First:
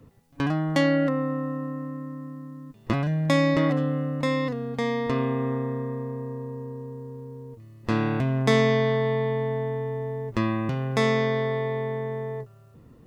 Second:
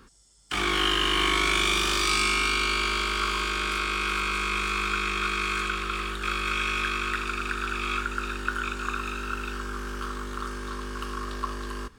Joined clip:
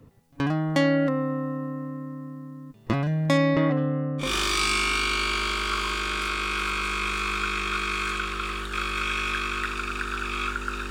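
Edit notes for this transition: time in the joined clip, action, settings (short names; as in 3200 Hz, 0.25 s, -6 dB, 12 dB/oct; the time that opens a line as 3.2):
first
3.37–4.34 LPF 5100 Hz -> 1300 Hz
4.26 switch to second from 1.76 s, crossfade 0.16 s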